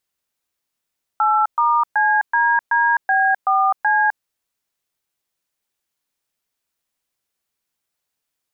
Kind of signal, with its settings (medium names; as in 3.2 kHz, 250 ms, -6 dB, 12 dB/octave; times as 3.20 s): DTMF "8*CDDB4C", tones 257 ms, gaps 121 ms, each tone -16 dBFS